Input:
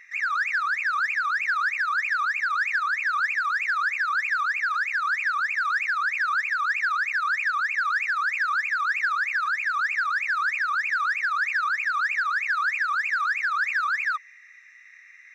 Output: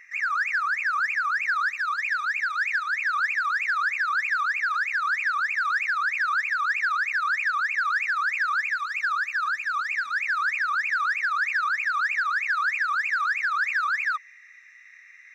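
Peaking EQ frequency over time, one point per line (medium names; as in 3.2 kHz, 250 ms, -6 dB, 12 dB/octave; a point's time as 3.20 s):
peaking EQ -12.5 dB 0.21 oct
1.41 s 3.7 kHz
2.17 s 1.1 kHz
2.94 s 1.1 kHz
3.61 s 430 Hz
8.22 s 430 Hz
9.06 s 2.1 kHz
9.62 s 2.1 kHz
10.77 s 500 Hz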